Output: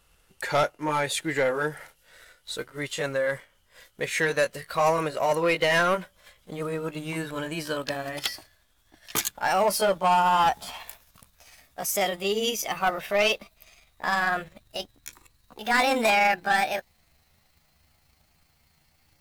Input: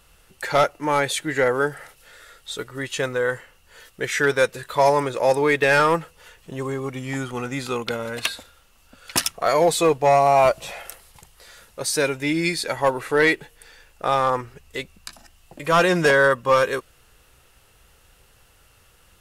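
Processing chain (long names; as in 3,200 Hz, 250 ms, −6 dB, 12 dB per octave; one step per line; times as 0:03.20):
pitch glide at a constant tempo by +8 semitones starting unshifted
leveller curve on the samples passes 1
level −6 dB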